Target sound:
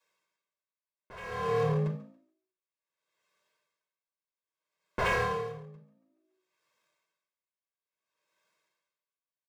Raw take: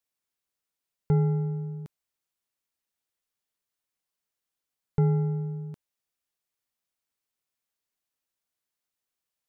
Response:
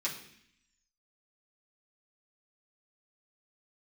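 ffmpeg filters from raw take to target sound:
-filter_complex "[0:a]acrossover=split=130[link_01][link_02];[link_01]aeval=exprs='val(0)*gte(abs(val(0)),0.0112)':channel_layout=same[link_03];[link_03][link_02]amix=inputs=2:normalize=0[link_04];[1:a]atrim=start_sample=2205,atrim=end_sample=4410[link_05];[link_04][link_05]afir=irnorm=-1:irlink=0,acontrast=84,lowpass=frequency=1300:poles=1,aeval=exprs='0.0668*(abs(mod(val(0)/0.0668+3,4)-2)-1)':channel_layout=same,lowshelf=frequency=320:gain=-9.5,alimiter=level_in=6.5dB:limit=-24dB:level=0:latency=1,volume=-6.5dB,lowshelf=frequency=95:gain=11,bandreject=frequency=50:width_type=h:width=6,bandreject=frequency=100:width_type=h:width=6,bandreject=frequency=150:width_type=h:width=6,aecho=1:1:1.9:0.67,asplit=5[link_06][link_07][link_08][link_09][link_10];[link_07]adelay=140,afreqshift=55,volume=-13dB[link_11];[link_08]adelay=280,afreqshift=110,volume=-20.7dB[link_12];[link_09]adelay=420,afreqshift=165,volume=-28.5dB[link_13];[link_10]adelay=560,afreqshift=220,volume=-36.2dB[link_14];[link_06][link_11][link_12][link_13][link_14]amix=inputs=5:normalize=0,aeval=exprs='val(0)*pow(10,-26*(0.5-0.5*cos(2*PI*0.59*n/s))/20)':channel_layout=same,volume=8.5dB"

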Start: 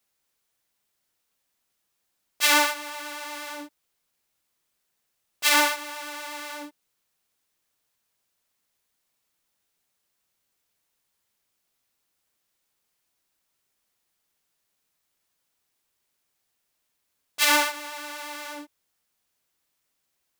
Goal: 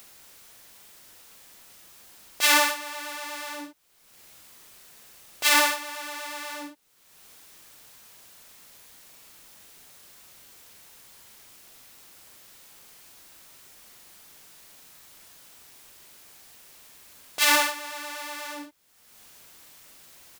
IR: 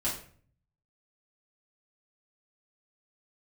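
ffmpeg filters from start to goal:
-filter_complex "[0:a]asplit=2[link_01][link_02];[link_02]adelay=42,volume=-7dB[link_03];[link_01][link_03]amix=inputs=2:normalize=0,acompressor=mode=upward:threshold=-31dB:ratio=2.5"

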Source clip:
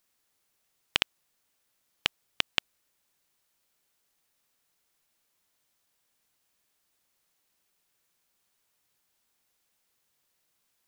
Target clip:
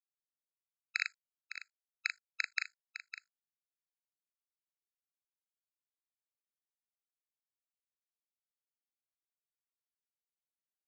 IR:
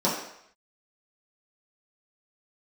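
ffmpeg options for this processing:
-filter_complex "[0:a]bandreject=frequency=50:width_type=h:width=6,bandreject=frequency=100:width_type=h:width=6,bandreject=frequency=150:width_type=h:width=6,bandreject=frequency=200:width_type=h:width=6,bandreject=frequency=250:width_type=h:width=6,bandreject=frequency=300:width_type=h:width=6,bandreject=frequency=350:width_type=h:width=6,bandreject=frequency=400:width_type=h:width=6,acontrast=48,alimiter=limit=-11.5dB:level=0:latency=1:release=37,acrusher=bits=6:dc=4:mix=0:aa=0.000001,asplit=2[link_01][link_02];[link_02]adelay=39,volume=-5dB[link_03];[link_01][link_03]amix=inputs=2:normalize=0,asplit=2[link_04][link_05];[link_05]aecho=0:1:557:0.282[link_06];[link_04][link_06]amix=inputs=2:normalize=0,aresample=16000,aresample=44100,afftfilt=real='re*eq(mod(floor(b*sr/1024/1300),2),1)':imag='im*eq(mod(floor(b*sr/1024/1300),2),1)':win_size=1024:overlap=0.75,volume=6.5dB"

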